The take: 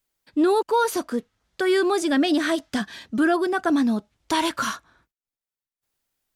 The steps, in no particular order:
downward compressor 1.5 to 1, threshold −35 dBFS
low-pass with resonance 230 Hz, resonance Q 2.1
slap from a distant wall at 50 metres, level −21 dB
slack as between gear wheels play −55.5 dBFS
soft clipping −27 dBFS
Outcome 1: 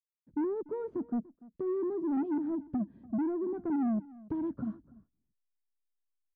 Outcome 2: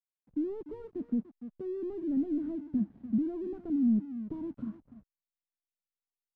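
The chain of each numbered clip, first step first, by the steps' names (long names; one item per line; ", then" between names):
slack as between gear wheels, then low-pass with resonance, then downward compressor, then soft clipping, then slap from a distant wall
slap from a distant wall, then downward compressor, then soft clipping, then low-pass with resonance, then slack as between gear wheels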